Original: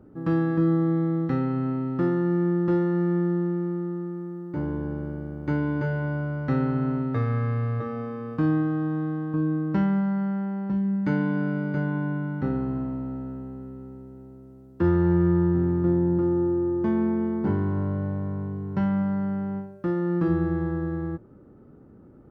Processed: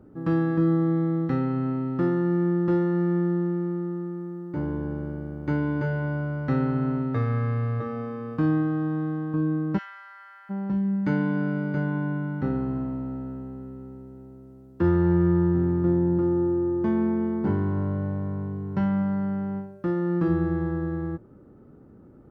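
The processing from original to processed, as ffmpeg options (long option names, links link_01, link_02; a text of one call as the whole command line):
ffmpeg -i in.wav -filter_complex "[0:a]asplit=3[link_01][link_02][link_03];[link_01]afade=type=out:start_time=9.77:duration=0.02[link_04];[link_02]highpass=frequency=1300:width=0.5412,highpass=frequency=1300:width=1.3066,afade=type=in:start_time=9.77:duration=0.02,afade=type=out:start_time=10.49:duration=0.02[link_05];[link_03]afade=type=in:start_time=10.49:duration=0.02[link_06];[link_04][link_05][link_06]amix=inputs=3:normalize=0" out.wav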